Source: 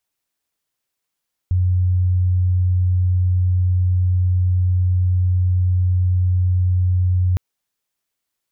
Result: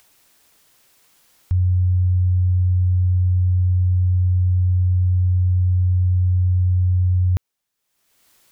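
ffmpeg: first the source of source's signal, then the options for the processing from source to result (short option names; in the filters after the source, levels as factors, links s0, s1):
-f lavfi -i "sine=f=90.9:d=5.86:r=44100,volume=4.56dB"
-af "acompressor=mode=upward:threshold=0.0126:ratio=2.5"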